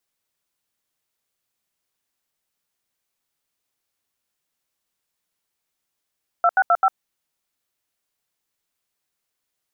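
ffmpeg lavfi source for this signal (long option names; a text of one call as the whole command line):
ffmpeg -f lavfi -i "aevalsrc='0.168*clip(min(mod(t,0.13),0.052-mod(t,0.13))/0.002,0,1)*(eq(floor(t/0.13),0)*(sin(2*PI*697*mod(t,0.13))+sin(2*PI*1336*mod(t,0.13)))+eq(floor(t/0.13),1)*(sin(2*PI*770*mod(t,0.13))+sin(2*PI*1477*mod(t,0.13)))+eq(floor(t/0.13),2)*(sin(2*PI*697*mod(t,0.13))+sin(2*PI*1336*mod(t,0.13)))+eq(floor(t/0.13),3)*(sin(2*PI*770*mod(t,0.13))+sin(2*PI*1336*mod(t,0.13))))':duration=0.52:sample_rate=44100" out.wav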